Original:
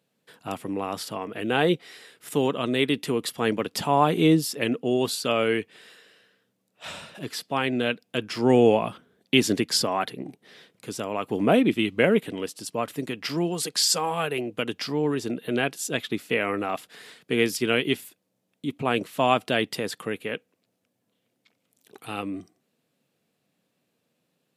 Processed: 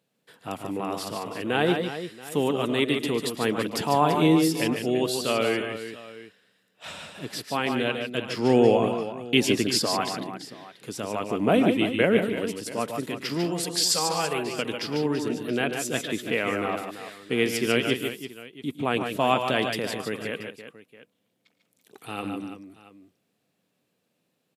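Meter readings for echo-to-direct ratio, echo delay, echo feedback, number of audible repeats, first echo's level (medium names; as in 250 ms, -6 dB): -4.0 dB, 110 ms, no regular repeats, 4, -17.0 dB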